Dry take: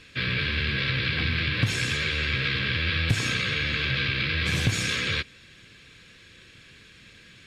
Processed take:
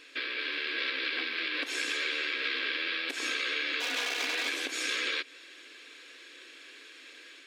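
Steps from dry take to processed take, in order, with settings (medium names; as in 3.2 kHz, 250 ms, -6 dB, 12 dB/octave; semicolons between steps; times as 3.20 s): 3.80–4.49 s: comb filter that takes the minimum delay 4.1 ms; compression, threshold -29 dBFS, peak gain reduction 11.5 dB; brick-wall FIR high-pass 260 Hz; level rider gain up to 3 dB; trim -1.5 dB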